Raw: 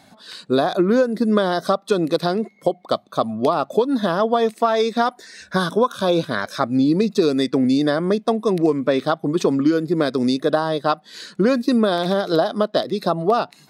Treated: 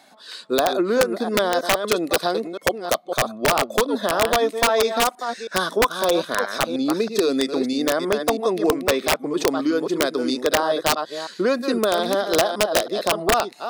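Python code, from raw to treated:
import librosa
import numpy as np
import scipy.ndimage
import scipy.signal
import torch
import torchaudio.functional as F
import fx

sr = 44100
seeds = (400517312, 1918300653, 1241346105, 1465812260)

y = fx.reverse_delay(x, sr, ms=322, wet_db=-7.5)
y = scipy.signal.sosfilt(scipy.signal.butter(2, 360.0, 'highpass', fs=sr, output='sos'), y)
y = (np.mod(10.0 ** (9.5 / 20.0) * y + 1.0, 2.0) - 1.0) / 10.0 ** (9.5 / 20.0)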